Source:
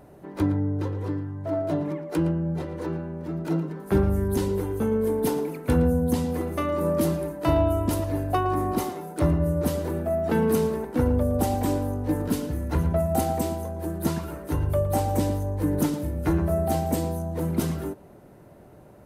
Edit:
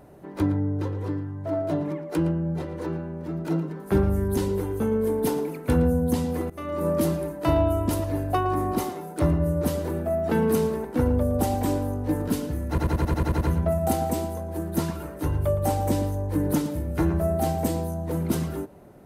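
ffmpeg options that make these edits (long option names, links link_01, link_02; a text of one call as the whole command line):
ffmpeg -i in.wav -filter_complex "[0:a]asplit=10[link_01][link_02][link_03][link_04][link_05][link_06][link_07][link_08][link_09][link_10];[link_01]atrim=end=6.5,asetpts=PTS-STARTPTS,afade=type=out:start_time=6.496:duration=0.004:curve=hsin:silence=0.125893[link_11];[link_02]atrim=start=6.5:end=12.782,asetpts=PTS-STARTPTS,afade=type=in:duration=0.37:silence=0.125893[link_12];[link_03]atrim=start=12.688:end=12.782[link_13];[link_04]atrim=start=12.688:end=12.782[link_14];[link_05]atrim=start=12.688:end=12.782[link_15];[link_06]atrim=start=12.688:end=12.782[link_16];[link_07]atrim=start=12.688:end=12.782[link_17];[link_08]atrim=start=12.688:end=12.782[link_18];[link_09]atrim=start=12.688:end=12.782[link_19];[link_10]atrim=start=12.688[link_20];[link_11][link_12]concat=n=2:v=0:a=1[link_21];[link_21][link_13]acrossfade=duration=0.004:curve1=hsin:curve2=hsin[link_22];[link_22][link_14]acrossfade=duration=0.004:curve1=hsin:curve2=hsin[link_23];[link_23][link_15]acrossfade=duration=0.004:curve1=hsin:curve2=hsin[link_24];[link_24][link_16]acrossfade=duration=0.004:curve1=hsin:curve2=hsin[link_25];[link_25][link_17]acrossfade=duration=0.004:curve1=hsin:curve2=hsin[link_26];[link_26][link_18]acrossfade=duration=0.004:curve1=hsin:curve2=hsin[link_27];[link_27][link_19]acrossfade=duration=0.004:curve1=hsin:curve2=hsin[link_28];[link_28][link_20]acrossfade=duration=0.004:curve1=hsin:curve2=hsin" out.wav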